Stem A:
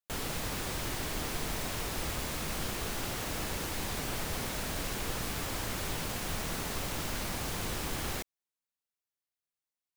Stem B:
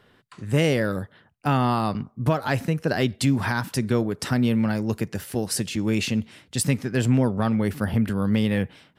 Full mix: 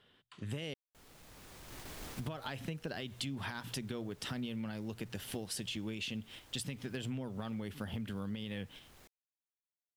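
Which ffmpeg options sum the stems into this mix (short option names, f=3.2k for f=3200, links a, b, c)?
-filter_complex "[0:a]volume=31.5dB,asoftclip=hard,volume=-31.5dB,adelay=850,volume=-8dB[a];[1:a]equalizer=f=3.2k:t=o:w=0.58:g=11.5,bandreject=f=60:t=h:w=6,bandreject=f=120:t=h:w=6,alimiter=limit=-13dB:level=0:latency=1:release=132,volume=-5dB,asplit=3[b][c][d];[b]atrim=end=0.74,asetpts=PTS-STARTPTS,afade=t=out:st=0.736:d=0.004:c=hsin[e];[c]atrim=start=0.74:end=2.14,asetpts=PTS-STARTPTS,volume=0[f];[d]atrim=start=2.14,asetpts=PTS-STARTPTS,afade=t=in:d=0.004:c=hsin[g];[e][f][g]concat=n=3:v=0:a=1,asplit=2[h][i];[i]apad=whole_len=477025[j];[a][j]sidechaincompress=threshold=-37dB:ratio=8:attack=38:release=1110[k];[k][h]amix=inputs=2:normalize=0,agate=range=-7dB:threshold=-44dB:ratio=16:detection=peak,acompressor=threshold=-38dB:ratio=5"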